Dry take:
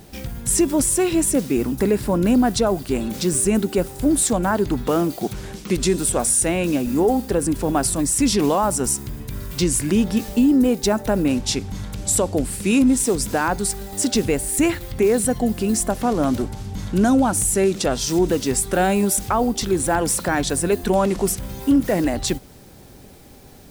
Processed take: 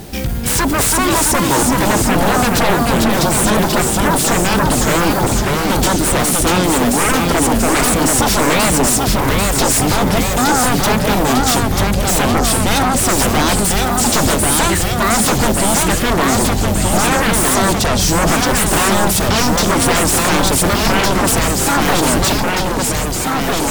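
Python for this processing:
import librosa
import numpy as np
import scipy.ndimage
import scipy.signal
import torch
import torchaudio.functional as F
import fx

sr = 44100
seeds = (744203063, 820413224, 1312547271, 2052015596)

y = fx.fold_sine(x, sr, drive_db=13, ceiling_db=-8.0)
y = fx.echo_pitch(y, sr, ms=296, semitones=-1, count=3, db_per_echo=-3.0)
y = y * librosa.db_to_amplitude(-4.5)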